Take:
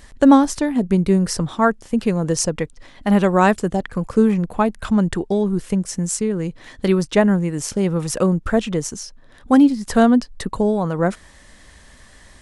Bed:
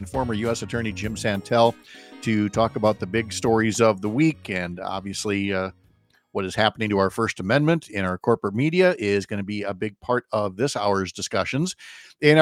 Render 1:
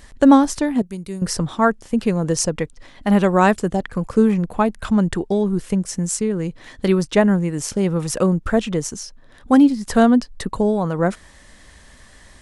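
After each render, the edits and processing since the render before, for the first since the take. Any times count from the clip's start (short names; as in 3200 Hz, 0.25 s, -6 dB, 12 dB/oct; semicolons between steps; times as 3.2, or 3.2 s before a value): 0.82–1.22 pre-emphasis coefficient 0.8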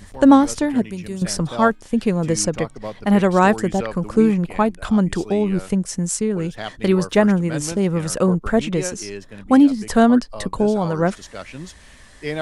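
add bed -11 dB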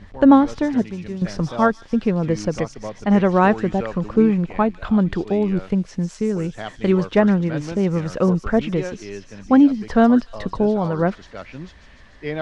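air absorption 230 m; thin delay 0.148 s, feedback 72%, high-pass 5400 Hz, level -3.5 dB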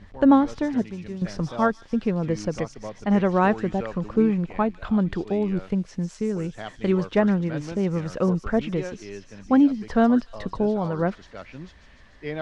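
gain -4.5 dB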